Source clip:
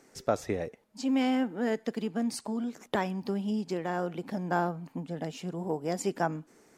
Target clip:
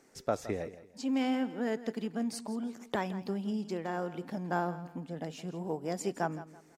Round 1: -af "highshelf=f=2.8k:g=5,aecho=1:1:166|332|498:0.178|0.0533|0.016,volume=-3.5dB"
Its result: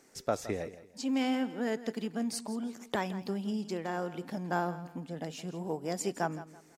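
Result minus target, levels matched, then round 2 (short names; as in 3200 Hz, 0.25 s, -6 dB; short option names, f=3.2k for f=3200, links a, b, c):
4000 Hz band +3.0 dB
-af "aecho=1:1:166|332|498:0.178|0.0533|0.016,volume=-3.5dB"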